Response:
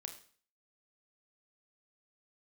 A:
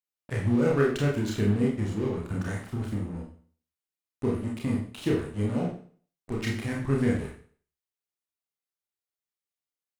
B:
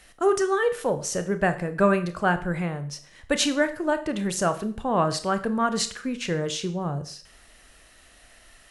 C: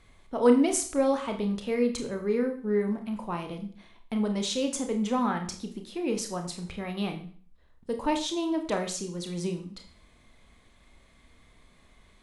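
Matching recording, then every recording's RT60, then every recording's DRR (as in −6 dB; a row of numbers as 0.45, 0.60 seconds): C; 0.45, 0.45, 0.45 seconds; −2.5, 9.5, 4.5 decibels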